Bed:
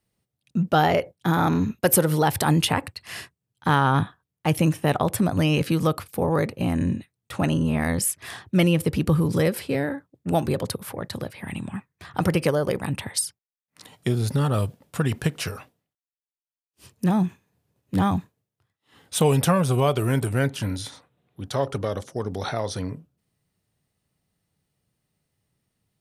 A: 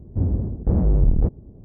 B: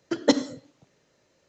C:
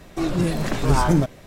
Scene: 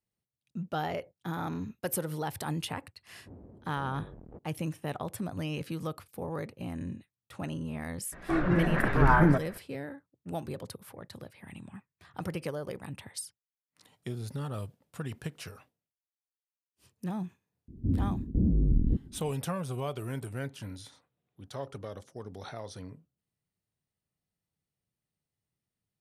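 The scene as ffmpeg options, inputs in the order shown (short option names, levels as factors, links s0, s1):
-filter_complex "[1:a]asplit=2[s0][s1];[0:a]volume=0.2[s2];[s0]highpass=f=700:p=1[s3];[3:a]lowpass=f=1700:t=q:w=3.1[s4];[s1]lowpass=f=270:t=q:w=2.6[s5];[s3]atrim=end=1.64,asetpts=PTS-STARTPTS,volume=0.211,afade=t=in:d=0.004:c=hsin,afade=t=out:st=1.636:d=0.004:c=hsin,adelay=3100[s6];[s4]atrim=end=1.46,asetpts=PTS-STARTPTS,volume=0.596,afade=t=in:d=0.004:c=hsin,afade=t=out:st=1.456:d=0.004:c=hsin,adelay=8120[s7];[s5]atrim=end=1.64,asetpts=PTS-STARTPTS,volume=0.355,afade=t=in:d=0.004:c=hsin,afade=t=out:st=1.636:d=0.004:c=hsin,adelay=17680[s8];[s2][s6][s7][s8]amix=inputs=4:normalize=0"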